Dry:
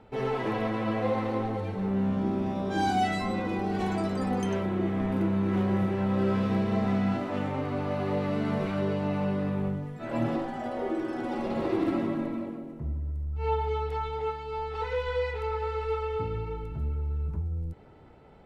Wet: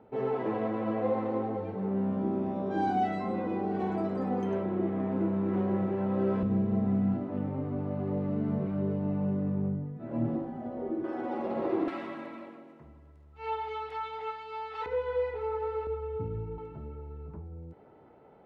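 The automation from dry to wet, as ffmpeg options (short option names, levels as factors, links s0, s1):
-af "asetnsamples=n=441:p=0,asendcmd='6.43 bandpass f 170;11.04 bandpass f 600;11.88 bandpass f 1900;14.86 bandpass f 440;15.87 bandpass f 180;16.58 bandpass f 570',bandpass=f=420:t=q:w=0.59:csg=0"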